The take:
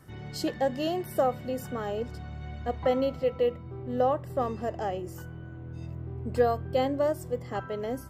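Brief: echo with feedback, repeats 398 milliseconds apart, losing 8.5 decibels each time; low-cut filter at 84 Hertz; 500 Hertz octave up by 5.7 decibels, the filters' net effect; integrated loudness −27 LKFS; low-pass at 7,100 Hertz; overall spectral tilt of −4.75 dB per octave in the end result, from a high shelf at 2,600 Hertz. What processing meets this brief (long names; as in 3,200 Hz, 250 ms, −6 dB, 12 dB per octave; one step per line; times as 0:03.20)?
high-pass filter 84 Hz
low-pass filter 7,100 Hz
parametric band 500 Hz +6.5 dB
high-shelf EQ 2,600 Hz −8 dB
repeating echo 398 ms, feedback 38%, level −8.5 dB
level −2 dB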